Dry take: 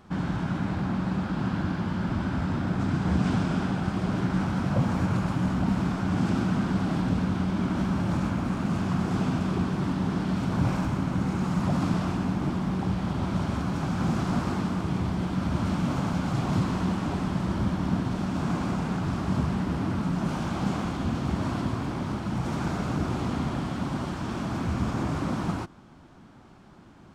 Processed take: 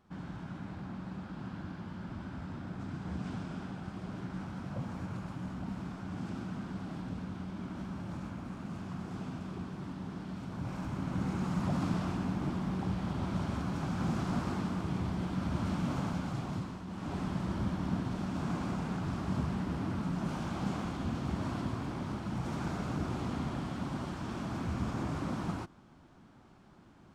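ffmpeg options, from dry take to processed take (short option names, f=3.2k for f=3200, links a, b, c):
-af "volume=4dB,afade=t=in:st=10.65:d=0.58:silence=0.421697,afade=t=out:st=16.02:d=0.84:silence=0.281838,afade=t=in:st=16.86:d=0.33:silence=0.298538"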